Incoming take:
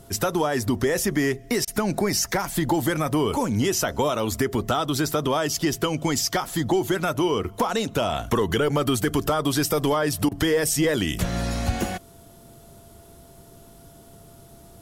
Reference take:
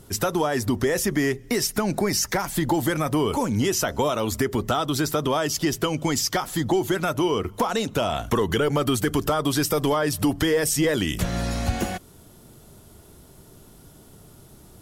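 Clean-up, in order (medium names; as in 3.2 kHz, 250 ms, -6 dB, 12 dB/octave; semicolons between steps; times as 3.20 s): band-stop 680 Hz, Q 30; interpolate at 1.65/10.29 s, 24 ms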